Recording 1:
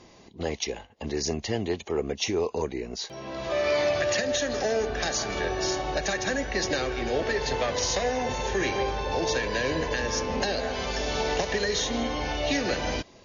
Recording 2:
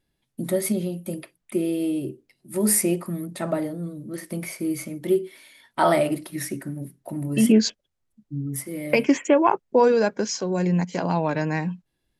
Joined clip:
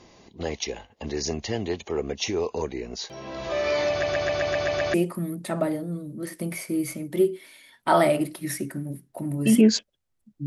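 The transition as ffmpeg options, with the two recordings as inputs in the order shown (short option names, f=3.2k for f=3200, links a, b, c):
-filter_complex "[0:a]apad=whole_dur=10.46,atrim=end=10.46,asplit=8[a][b][c][d][e][f][g][h];[a]atrim=end=4.032[i];[b]atrim=start=3.898:end=4.032[j];[c]atrim=start=3.898:end=4.032[k];[d]atrim=start=3.898:end=4.032[l];[e]atrim=start=3.898:end=4.032[m];[f]atrim=start=3.898:end=4.032[n];[g]atrim=start=3.898:end=4.032[o];[h]atrim=start=3.898:end=4.032[p];[1:a]atrim=start=2.848:end=8.37[q];[i][j]acrossfade=d=0.004:c1=hsin:c2=hsin[r];[r][k]acrossfade=d=0.004:c1=hsin:c2=hsin[s];[s][l]acrossfade=d=0.004:c1=hsin:c2=hsin[t];[t][m]acrossfade=d=0.004:c1=hsin:c2=hsin[u];[u][n]acrossfade=d=0.004:c1=hsin:c2=hsin[v];[v][o]acrossfade=d=0.004:c1=hsin:c2=hsin[w];[w][p]acrossfade=d=0.004:c1=hsin:c2=hsin[x];[x][q]acrossfade=d=0.004:c1=hsin:c2=hsin"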